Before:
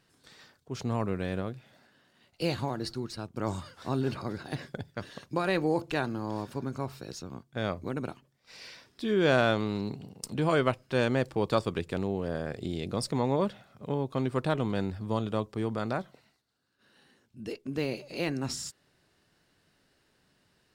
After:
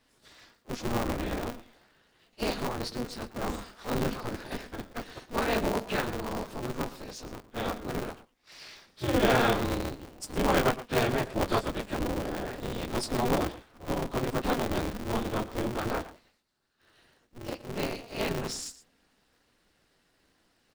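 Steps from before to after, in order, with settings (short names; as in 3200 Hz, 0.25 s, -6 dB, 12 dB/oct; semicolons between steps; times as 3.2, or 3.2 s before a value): phase scrambler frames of 50 ms; echo 0.115 s -15.5 dB; polarity switched at an audio rate 120 Hz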